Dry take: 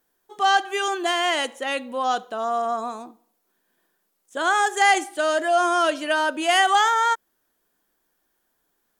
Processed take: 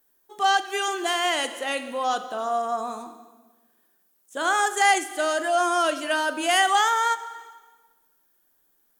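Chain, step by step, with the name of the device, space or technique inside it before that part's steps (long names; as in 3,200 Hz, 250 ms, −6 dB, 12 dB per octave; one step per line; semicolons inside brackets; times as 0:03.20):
compressed reverb return (on a send at −6.5 dB: convolution reverb RT60 1.3 s, pre-delay 15 ms + downward compressor, threshold −23 dBFS, peak gain reduction 11.5 dB)
on the sum: high-shelf EQ 9,400 Hz +11 dB
level −2.5 dB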